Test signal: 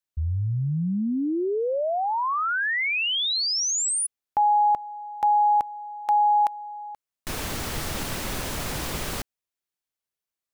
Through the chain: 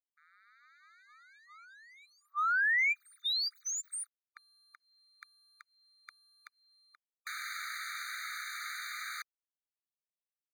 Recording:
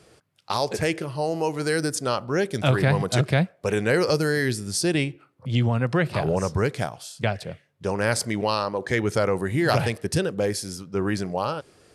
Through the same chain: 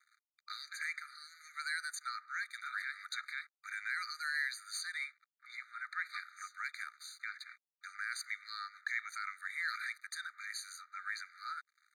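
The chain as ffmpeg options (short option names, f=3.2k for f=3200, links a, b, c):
-filter_complex "[0:a]asplit=2[a][b];[b]acompressor=threshold=-31dB:ratio=5:attack=8.9:release=335:knee=1:detection=rms,volume=-2.5dB[c];[a][c]amix=inputs=2:normalize=0,alimiter=limit=-14dB:level=0:latency=1:release=48,acrossover=split=280|1800[d][e][f];[e]acompressor=threshold=-33dB:ratio=4:attack=0.37:release=424:knee=2.83:detection=peak[g];[d][g][f]amix=inputs=3:normalize=0,aeval=exprs='sgn(val(0))*max(abs(val(0))-0.00501,0)':c=same,asplit=2[h][i];[i]highpass=f=720:p=1,volume=11dB,asoftclip=type=tanh:threshold=-13.5dB[j];[h][j]amix=inputs=2:normalize=0,lowpass=f=1.2k:p=1,volume=-6dB,afftfilt=real='re*eq(mod(floor(b*sr/1024/1200),2),1)':imag='im*eq(mod(floor(b*sr/1024/1200),2),1)':win_size=1024:overlap=0.75,volume=-2dB"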